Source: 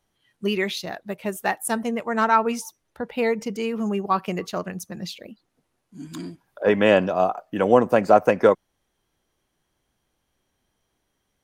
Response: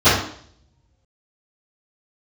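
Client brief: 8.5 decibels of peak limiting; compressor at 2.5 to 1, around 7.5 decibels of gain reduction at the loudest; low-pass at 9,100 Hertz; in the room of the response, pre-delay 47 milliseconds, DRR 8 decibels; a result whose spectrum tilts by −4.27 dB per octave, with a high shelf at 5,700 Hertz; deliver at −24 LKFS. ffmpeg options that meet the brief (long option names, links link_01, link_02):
-filter_complex "[0:a]lowpass=9100,highshelf=frequency=5700:gain=8,acompressor=threshold=-21dB:ratio=2.5,alimiter=limit=-17.5dB:level=0:latency=1,asplit=2[link_01][link_02];[1:a]atrim=start_sample=2205,adelay=47[link_03];[link_02][link_03]afir=irnorm=-1:irlink=0,volume=-34dB[link_04];[link_01][link_04]amix=inputs=2:normalize=0,volume=4.5dB"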